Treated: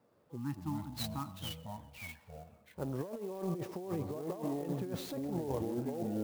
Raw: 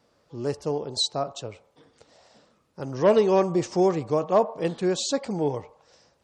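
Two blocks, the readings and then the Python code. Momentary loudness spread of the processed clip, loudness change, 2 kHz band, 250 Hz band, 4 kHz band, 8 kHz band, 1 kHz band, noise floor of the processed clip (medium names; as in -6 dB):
11 LU, -15.0 dB, -11.5 dB, -9.0 dB, -15.5 dB, -16.0 dB, -16.0 dB, -68 dBFS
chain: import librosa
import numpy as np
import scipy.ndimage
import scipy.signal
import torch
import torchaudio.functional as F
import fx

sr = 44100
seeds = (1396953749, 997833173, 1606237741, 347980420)

p1 = scipy.signal.sosfilt(scipy.signal.butter(2, 100.0, 'highpass', fs=sr, output='sos'), x)
p2 = fx.spec_erase(p1, sr, start_s=0.36, length_s=1.94, low_hz=340.0, high_hz=760.0)
p3 = fx.echo_pitch(p2, sr, ms=118, semitones=-5, count=2, db_per_echo=-6.0)
p4 = fx.lowpass(p3, sr, hz=1100.0, slope=6)
p5 = p4 + fx.echo_feedback(p4, sr, ms=126, feedback_pct=60, wet_db=-23.0, dry=0)
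p6 = fx.over_compress(p5, sr, threshold_db=-29.0, ratio=-1.0)
p7 = fx.clock_jitter(p6, sr, seeds[0], jitter_ms=0.031)
y = F.gain(torch.from_numpy(p7), -8.5).numpy()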